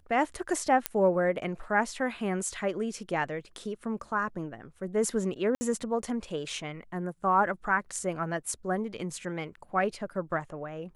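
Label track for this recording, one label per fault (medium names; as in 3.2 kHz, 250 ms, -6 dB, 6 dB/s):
0.860000	0.860000	pop -8 dBFS
5.550000	5.610000	dropout 60 ms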